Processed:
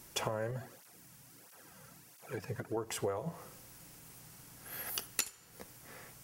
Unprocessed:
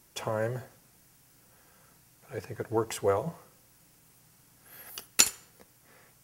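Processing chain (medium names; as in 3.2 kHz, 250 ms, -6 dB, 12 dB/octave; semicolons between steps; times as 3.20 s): compression 16:1, threshold -38 dBFS, peak gain reduction 24 dB; 0.51–2.77 s: cancelling through-zero flanger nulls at 1.5 Hz, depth 3.2 ms; trim +6 dB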